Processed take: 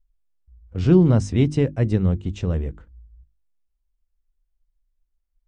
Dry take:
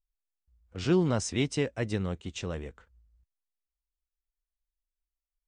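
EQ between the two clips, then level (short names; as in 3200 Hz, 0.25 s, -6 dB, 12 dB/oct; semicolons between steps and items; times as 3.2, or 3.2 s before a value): tilt -2 dB/oct; low shelf 360 Hz +8 dB; notches 50/100/150/200/250/300/350 Hz; +1.5 dB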